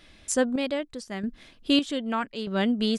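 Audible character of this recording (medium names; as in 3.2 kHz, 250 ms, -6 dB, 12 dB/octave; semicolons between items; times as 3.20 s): chopped level 0.81 Hz, depth 60%, duty 45%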